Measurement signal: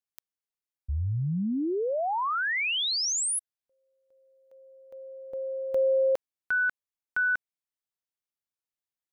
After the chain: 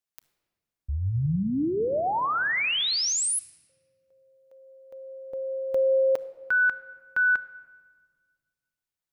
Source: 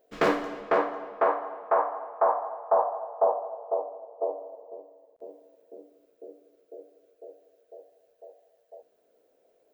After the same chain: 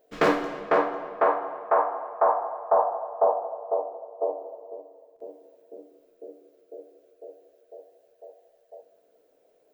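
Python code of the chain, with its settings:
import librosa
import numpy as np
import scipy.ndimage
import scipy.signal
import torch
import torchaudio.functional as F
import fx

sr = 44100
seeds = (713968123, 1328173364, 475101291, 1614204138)

y = fx.room_shoebox(x, sr, seeds[0], volume_m3=2400.0, walls='mixed', distance_m=0.43)
y = y * 10.0 ** (2.0 / 20.0)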